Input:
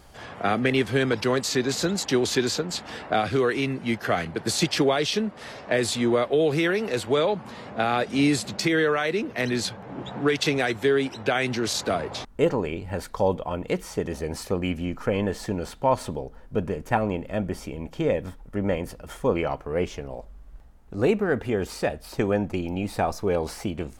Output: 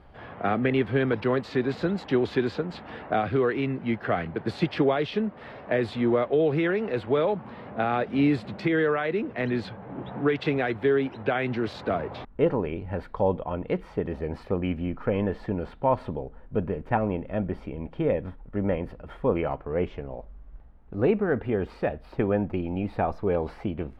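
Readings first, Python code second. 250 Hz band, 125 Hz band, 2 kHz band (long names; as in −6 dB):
−0.5 dB, 0.0 dB, −4.0 dB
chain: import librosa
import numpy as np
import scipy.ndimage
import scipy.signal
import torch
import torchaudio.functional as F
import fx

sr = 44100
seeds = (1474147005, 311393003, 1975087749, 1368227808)

y = fx.air_absorb(x, sr, metres=450.0)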